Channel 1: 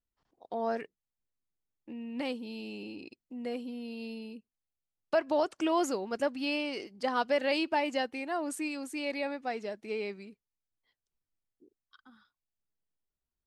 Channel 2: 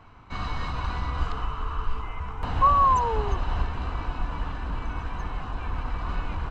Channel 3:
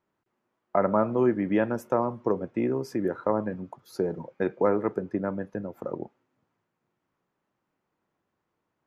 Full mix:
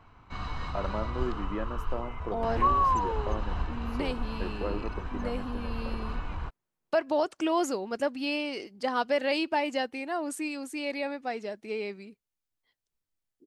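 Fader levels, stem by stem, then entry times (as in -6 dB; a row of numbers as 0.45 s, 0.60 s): +1.5 dB, -5.0 dB, -11.0 dB; 1.80 s, 0.00 s, 0.00 s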